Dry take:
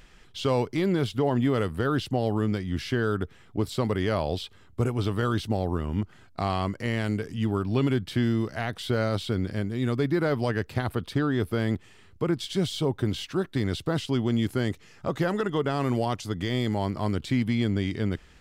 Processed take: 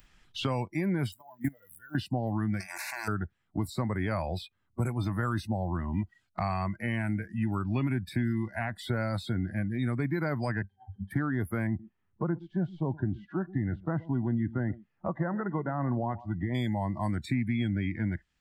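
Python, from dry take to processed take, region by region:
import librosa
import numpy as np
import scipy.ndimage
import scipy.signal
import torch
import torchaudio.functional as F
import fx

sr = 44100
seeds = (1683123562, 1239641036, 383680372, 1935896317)

y = fx.chain(x, sr, fx.crossing_spikes(level_db=-26.5),
    fx.level_steps(step_db=22), at=(1.12, 1.95))
y = fx.chain(y, sr, fx.level_steps(step_db=10),
    fx.spectral_comp(ratio=10.0), at=(2.6, 3.08))
y = fx.chain(y, sr, fx.highpass(hz=65.0, slope=6),
    fx.over_compress(threshold_db=-33.0, ratio=-0.5),
    fx.octave_resonator(note='G', decay_s=0.13), at=(10.62, 11.11))
y = fx.chain(y, sr, fx.lowpass(hz=1300.0, slope=12),
    fx.echo_single(ms=121, db=-16.5), at=(11.67, 16.55))
y = fx.noise_reduce_blind(y, sr, reduce_db=26)
y = fx.peak_eq(y, sr, hz=440.0, db=-9.0, octaves=0.65)
y = fx.band_squash(y, sr, depth_pct=70)
y = y * 10.0 ** (-2.5 / 20.0)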